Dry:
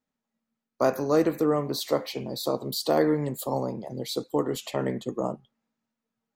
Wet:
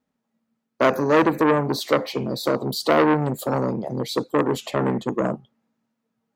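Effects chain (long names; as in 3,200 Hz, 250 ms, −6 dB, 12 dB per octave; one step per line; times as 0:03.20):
high-pass filter 160 Hz 6 dB per octave
spectral tilt −2 dB per octave
saturating transformer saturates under 1,400 Hz
level +7 dB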